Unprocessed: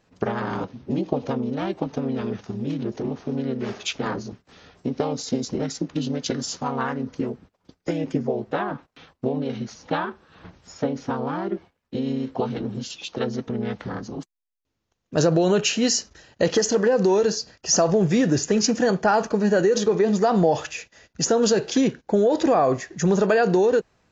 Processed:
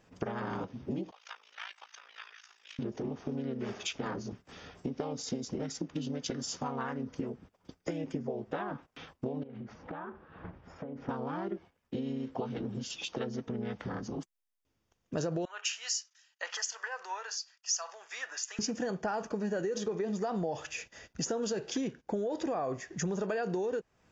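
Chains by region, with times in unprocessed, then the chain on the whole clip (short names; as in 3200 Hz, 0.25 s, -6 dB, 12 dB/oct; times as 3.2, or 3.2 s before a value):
1.11–2.79 HPF 1400 Hz 24 dB/oct + AM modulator 55 Hz, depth 70%
9.43–11.09 LPF 1700 Hz + compressor 8:1, threshold -37 dBFS + Doppler distortion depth 0.12 ms
15.45–18.59 HPF 1000 Hz 24 dB/oct + three-band expander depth 100%
whole clip: notch 4100 Hz, Q 8.1; compressor 3:1, threshold -36 dBFS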